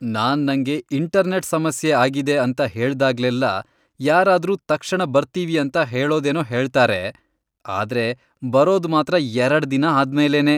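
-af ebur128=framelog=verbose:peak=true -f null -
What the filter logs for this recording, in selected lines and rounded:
Integrated loudness:
  I:         -19.3 LUFS
  Threshold: -29.5 LUFS
Loudness range:
  LRA:         1.7 LU
  Threshold: -39.8 LUFS
  LRA low:   -20.7 LUFS
  LRA high:  -19.0 LUFS
True peak:
  Peak:       -3.7 dBFS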